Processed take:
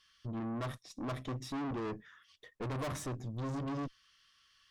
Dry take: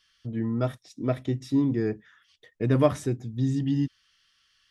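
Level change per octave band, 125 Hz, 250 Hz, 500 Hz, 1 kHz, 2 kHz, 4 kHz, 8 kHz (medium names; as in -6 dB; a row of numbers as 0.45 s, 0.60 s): -12.5 dB, -13.0 dB, -14.0 dB, -5.0 dB, -5.0 dB, -4.5 dB, -3.0 dB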